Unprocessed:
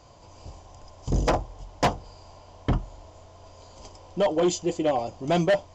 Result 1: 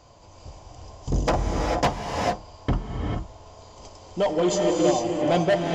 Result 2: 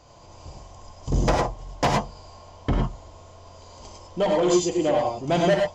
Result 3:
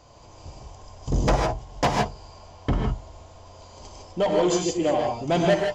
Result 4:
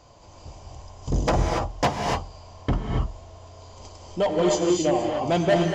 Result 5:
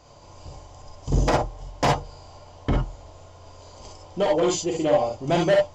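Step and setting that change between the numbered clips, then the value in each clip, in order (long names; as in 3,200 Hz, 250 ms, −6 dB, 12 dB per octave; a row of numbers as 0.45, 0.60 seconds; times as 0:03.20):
reverb whose tail is shaped and stops, gate: 470, 130, 180, 310, 80 milliseconds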